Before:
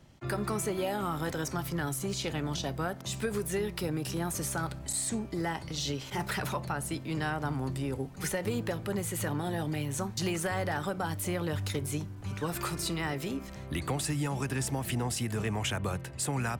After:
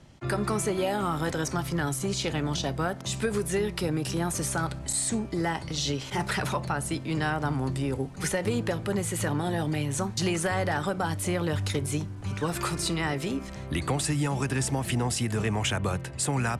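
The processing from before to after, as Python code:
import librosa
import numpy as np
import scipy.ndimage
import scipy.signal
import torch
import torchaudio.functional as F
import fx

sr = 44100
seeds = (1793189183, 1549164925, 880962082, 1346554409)

y = scipy.signal.sosfilt(scipy.signal.butter(4, 11000.0, 'lowpass', fs=sr, output='sos'), x)
y = y * 10.0 ** (4.5 / 20.0)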